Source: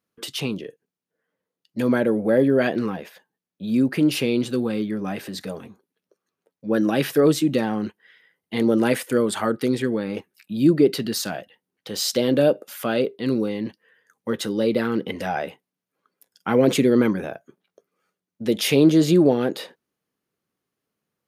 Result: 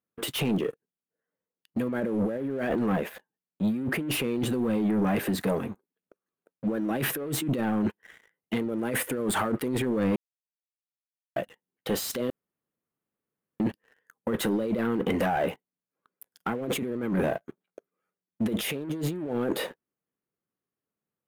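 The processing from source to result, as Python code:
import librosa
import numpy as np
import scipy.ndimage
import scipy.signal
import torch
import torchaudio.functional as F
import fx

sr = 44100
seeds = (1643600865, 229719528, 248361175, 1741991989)

y = fx.edit(x, sr, fx.silence(start_s=10.16, length_s=1.2),
    fx.room_tone_fill(start_s=12.3, length_s=1.3), tone=tone)
y = fx.over_compress(y, sr, threshold_db=-28.0, ratio=-1.0)
y = fx.leveller(y, sr, passes=3)
y = fx.peak_eq(y, sr, hz=5000.0, db=-12.5, octaves=1.3)
y = F.gain(torch.from_numpy(y), -9.0).numpy()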